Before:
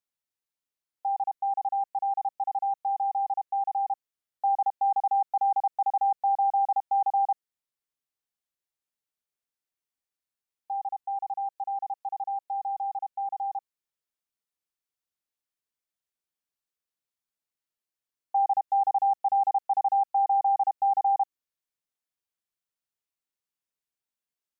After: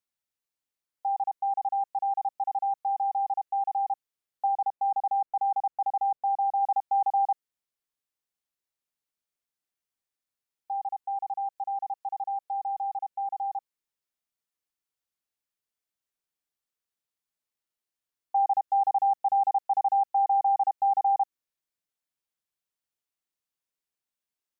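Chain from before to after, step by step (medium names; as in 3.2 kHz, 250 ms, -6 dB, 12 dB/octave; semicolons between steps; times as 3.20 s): 4.46–6.61 s: low-pass 1 kHz -> 1 kHz 6 dB/octave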